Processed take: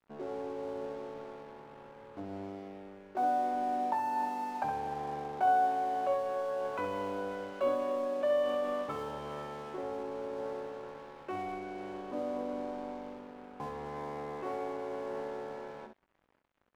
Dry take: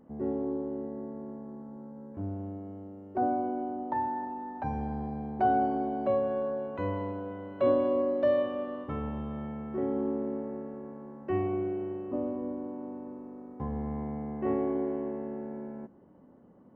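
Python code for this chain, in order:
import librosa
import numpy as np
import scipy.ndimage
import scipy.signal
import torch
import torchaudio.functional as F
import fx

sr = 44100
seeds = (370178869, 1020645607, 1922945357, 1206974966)

p1 = fx.high_shelf(x, sr, hz=3600.0, db=-9.5)
p2 = fx.notch(p1, sr, hz=1900.0, q=6.2)
p3 = fx.over_compress(p2, sr, threshold_db=-36.0, ratio=-1.0)
p4 = p2 + (p3 * 10.0 ** (2.5 / 20.0))
p5 = fx.bandpass_q(p4, sr, hz=2400.0, q=0.58)
p6 = np.sign(p5) * np.maximum(np.abs(p5) - 10.0 ** (-54.0 / 20.0), 0.0)
p7 = p6 + fx.room_early_taps(p6, sr, ms=(20, 66), db=(-8.5, -7.0), dry=0)
y = p7 * 10.0 ** (2.0 / 20.0)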